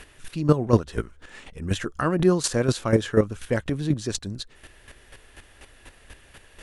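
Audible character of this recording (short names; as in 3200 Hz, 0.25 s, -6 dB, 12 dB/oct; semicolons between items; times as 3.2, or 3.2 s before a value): chopped level 4.1 Hz, depth 65%, duty 15%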